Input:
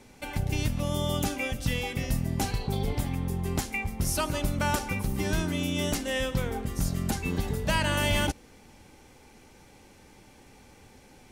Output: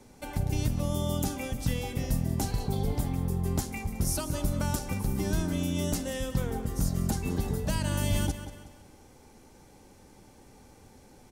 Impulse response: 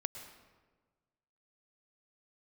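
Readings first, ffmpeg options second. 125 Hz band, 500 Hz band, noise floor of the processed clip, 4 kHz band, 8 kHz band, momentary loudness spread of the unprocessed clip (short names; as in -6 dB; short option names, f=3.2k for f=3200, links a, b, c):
+0.5 dB, -3.0 dB, -55 dBFS, -6.5 dB, -1.0 dB, 5 LU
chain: -filter_complex "[0:a]asplit=2[a][b];[b]aecho=0:1:184|368|552|736:0.2|0.0758|0.0288|0.0109[c];[a][c]amix=inputs=2:normalize=0,acrossover=split=310|3000[d][e][f];[e]acompressor=threshold=-33dB:ratio=6[g];[d][g][f]amix=inputs=3:normalize=0,equalizer=f=2.5k:w=0.94:g=-8"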